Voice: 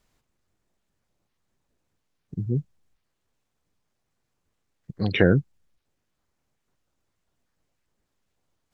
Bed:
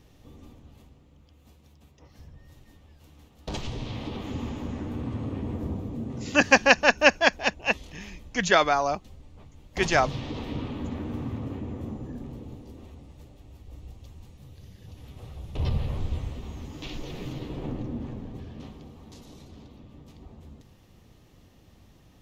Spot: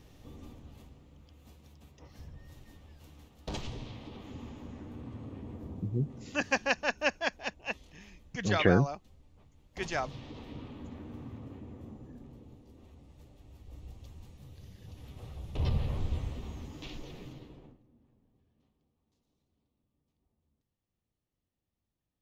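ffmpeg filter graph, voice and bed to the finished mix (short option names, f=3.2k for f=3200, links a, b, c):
-filter_complex "[0:a]adelay=3450,volume=-5.5dB[a];[1:a]volume=8.5dB,afade=t=out:st=3.02:d=0.97:silence=0.266073,afade=t=in:st=12.66:d=1.33:silence=0.375837,afade=t=out:st=16.42:d=1.37:silence=0.0354813[b];[a][b]amix=inputs=2:normalize=0"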